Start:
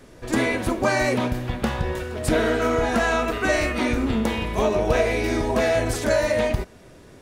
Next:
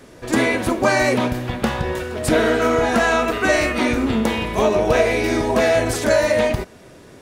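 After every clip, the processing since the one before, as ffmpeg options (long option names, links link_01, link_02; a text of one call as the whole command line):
ffmpeg -i in.wav -af "lowshelf=frequency=66:gain=-11,volume=4.5dB" out.wav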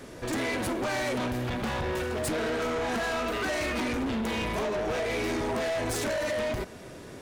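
ffmpeg -i in.wav -af "acompressor=threshold=-19dB:ratio=6,asoftclip=type=tanh:threshold=-27dB" out.wav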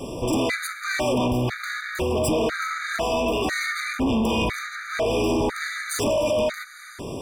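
ffmpeg -i in.wav -filter_complex "[0:a]asplit=2[link_01][link_02];[link_02]acompressor=threshold=-38dB:ratio=6,volume=2.5dB[link_03];[link_01][link_03]amix=inputs=2:normalize=0,afftfilt=real='re*gt(sin(2*PI*1*pts/sr)*(1-2*mod(floor(b*sr/1024/1200),2)),0)':imag='im*gt(sin(2*PI*1*pts/sr)*(1-2*mod(floor(b*sr/1024/1200),2)),0)':win_size=1024:overlap=0.75,volume=5dB" out.wav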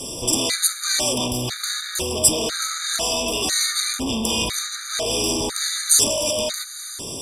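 ffmpeg -i in.wav -af "aexciter=amount=9.3:drive=2.8:freq=3200,lowpass=frequency=12000:width=0.5412,lowpass=frequency=12000:width=1.3066,volume=-3.5dB" out.wav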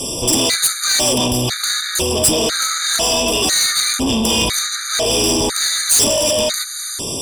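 ffmpeg -i in.wav -af "asoftclip=type=tanh:threshold=-16.5dB,volume=8dB" out.wav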